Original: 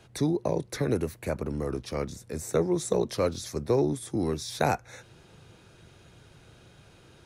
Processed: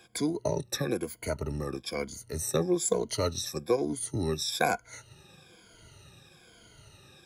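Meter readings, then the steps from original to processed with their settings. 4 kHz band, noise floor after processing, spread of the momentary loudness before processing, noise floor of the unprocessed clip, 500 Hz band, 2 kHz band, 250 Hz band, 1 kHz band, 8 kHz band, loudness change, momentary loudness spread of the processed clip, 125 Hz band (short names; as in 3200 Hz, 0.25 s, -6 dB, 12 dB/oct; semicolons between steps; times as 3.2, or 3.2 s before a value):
+4.5 dB, -58 dBFS, 8 LU, -56 dBFS, -2.5 dB, +2.5 dB, -3.0 dB, -1.5 dB, +5.0 dB, -1.5 dB, 8 LU, -3.5 dB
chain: moving spectral ripple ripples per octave 1.8, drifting -1.1 Hz, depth 18 dB; high shelf 2200 Hz +8 dB; transient shaper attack +1 dB, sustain -3 dB; gain -6 dB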